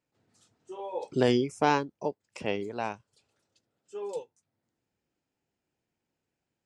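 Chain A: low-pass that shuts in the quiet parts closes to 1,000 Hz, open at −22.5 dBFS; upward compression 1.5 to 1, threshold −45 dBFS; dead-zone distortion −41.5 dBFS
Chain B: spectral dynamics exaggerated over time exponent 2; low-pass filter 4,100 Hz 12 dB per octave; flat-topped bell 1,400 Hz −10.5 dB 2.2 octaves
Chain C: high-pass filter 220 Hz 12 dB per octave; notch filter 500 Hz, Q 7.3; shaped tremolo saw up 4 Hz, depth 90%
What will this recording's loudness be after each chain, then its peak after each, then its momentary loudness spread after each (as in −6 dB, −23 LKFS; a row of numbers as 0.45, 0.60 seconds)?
−31.5, −33.0, −35.0 LKFS; −10.5, −16.0, −12.5 dBFS; 18, 21, 17 LU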